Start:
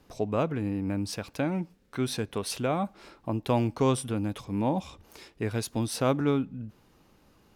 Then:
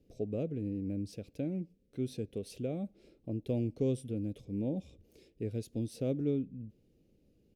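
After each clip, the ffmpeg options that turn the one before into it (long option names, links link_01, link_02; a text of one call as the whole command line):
ffmpeg -i in.wav -af "firequalizer=gain_entry='entry(500,0);entry(960,-29);entry(2400,-11)':delay=0.05:min_phase=1,volume=-6dB" out.wav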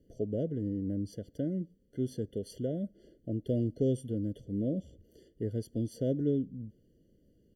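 ffmpeg -i in.wav -af "afftfilt=real='re*eq(mod(floor(b*sr/1024/700),2),0)':imag='im*eq(mod(floor(b*sr/1024/700),2),0)':win_size=1024:overlap=0.75,volume=2.5dB" out.wav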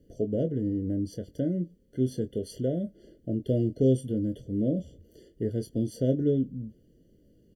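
ffmpeg -i in.wav -filter_complex "[0:a]asplit=2[link_01][link_02];[link_02]adelay=23,volume=-8.5dB[link_03];[link_01][link_03]amix=inputs=2:normalize=0,volume=4.5dB" out.wav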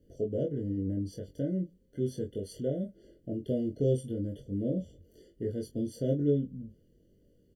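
ffmpeg -i in.wav -filter_complex "[0:a]asplit=2[link_01][link_02];[link_02]adelay=21,volume=-2.5dB[link_03];[link_01][link_03]amix=inputs=2:normalize=0,volume=-5.5dB" out.wav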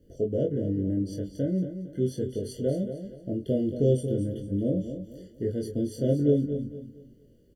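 ffmpeg -i in.wav -af "aecho=1:1:228|456|684|912:0.335|0.107|0.0343|0.011,volume=4.5dB" out.wav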